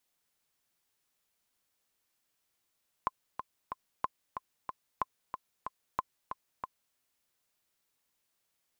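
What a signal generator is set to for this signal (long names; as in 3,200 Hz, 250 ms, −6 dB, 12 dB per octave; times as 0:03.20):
click track 185 BPM, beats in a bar 3, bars 4, 1,040 Hz, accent 7.5 dB −16 dBFS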